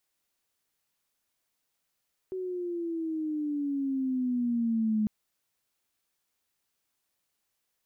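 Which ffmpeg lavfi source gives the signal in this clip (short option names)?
-f lavfi -i "aevalsrc='pow(10,(-23.5+8*(t/2.75-1))/20)*sin(2*PI*377*2.75/(-10*log(2)/12)*(exp(-10*log(2)/12*t/2.75)-1))':d=2.75:s=44100"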